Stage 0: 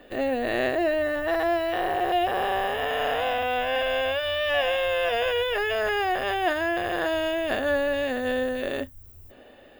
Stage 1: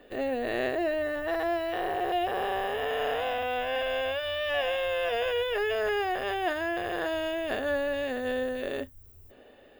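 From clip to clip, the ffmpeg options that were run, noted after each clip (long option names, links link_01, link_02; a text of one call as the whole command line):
ffmpeg -i in.wav -af "equalizer=frequency=430:width=5.1:gain=5.5,volume=-5dB" out.wav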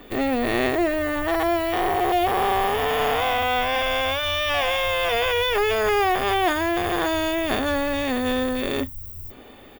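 ffmpeg -i in.wav -filter_complex "[0:a]asplit=2[link_01][link_02];[link_02]asoftclip=type=hard:threshold=-31.5dB,volume=-8dB[link_03];[link_01][link_03]amix=inputs=2:normalize=0,aecho=1:1:0.9:0.58,crystalizer=i=0.5:c=0,volume=8dB" out.wav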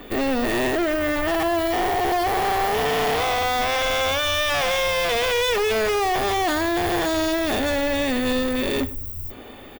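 ffmpeg -i in.wav -filter_complex "[0:a]asoftclip=type=hard:threshold=-24dB,asplit=2[link_01][link_02];[link_02]adelay=103,lowpass=frequency=2400:poles=1,volume=-17dB,asplit=2[link_03][link_04];[link_04]adelay=103,lowpass=frequency=2400:poles=1,volume=0.3,asplit=2[link_05][link_06];[link_06]adelay=103,lowpass=frequency=2400:poles=1,volume=0.3[link_07];[link_01][link_03][link_05][link_07]amix=inputs=4:normalize=0,volume=4.5dB" out.wav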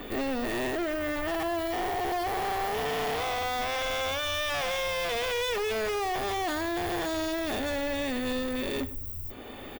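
ffmpeg -i in.wav -af "alimiter=level_in=2.5dB:limit=-24dB:level=0:latency=1:release=445,volume=-2.5dB" out.wav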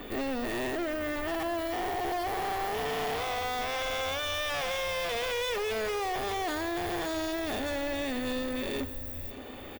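ffmpeg -i in.wav -af "aecho=1:1:578|1156|1734|2312|2890:0.15|0.0823|0.0453|0.0249|0.0137,volume=-2dB" out.wav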